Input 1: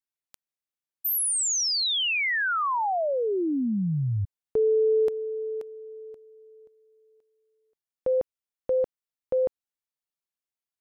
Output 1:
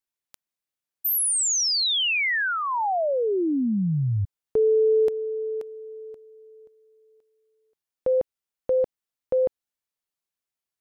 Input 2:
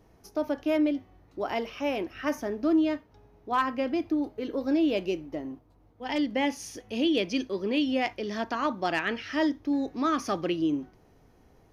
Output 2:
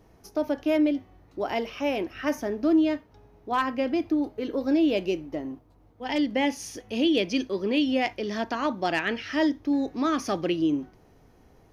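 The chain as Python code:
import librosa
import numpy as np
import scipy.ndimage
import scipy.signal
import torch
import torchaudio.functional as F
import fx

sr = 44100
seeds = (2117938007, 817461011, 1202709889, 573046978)

y = fx.dynamic_eq(x, sr, hz=1200.0, q=2.5, threshold_db=-42.0, ratio=4.0, max_db=-4)
y = F.gain(torch.from_numpy(y), 2.5).numpy()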